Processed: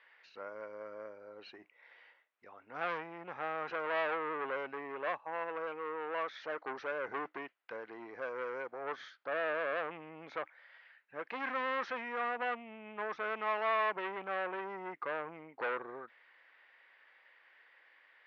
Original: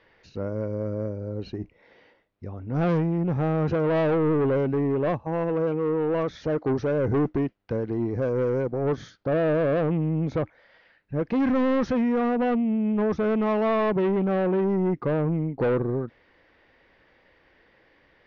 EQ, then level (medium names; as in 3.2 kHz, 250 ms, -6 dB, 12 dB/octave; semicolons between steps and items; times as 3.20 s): high-pass 1.3 kHz 12 dB/octave; low-pass 2.7 kHz 12 dB/octave; +1.5 dB